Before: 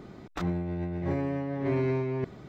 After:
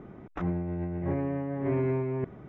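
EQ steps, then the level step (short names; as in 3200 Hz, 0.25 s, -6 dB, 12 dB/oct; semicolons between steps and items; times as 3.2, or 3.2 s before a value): running mean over 10 samples; air absorption 72 m; 0.0 dB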